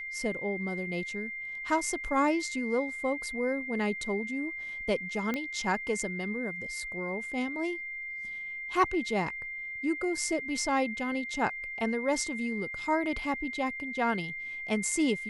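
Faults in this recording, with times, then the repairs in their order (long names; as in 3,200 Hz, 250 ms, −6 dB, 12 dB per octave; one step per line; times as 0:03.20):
whistle 2,100 Hz −36 dBFS
0:05.34: click −18 dBFS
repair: click removal
notch filter 2,100 Hz, Q 30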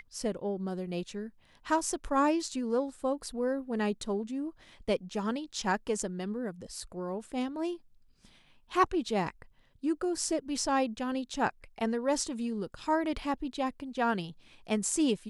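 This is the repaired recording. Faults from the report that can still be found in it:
none of them is left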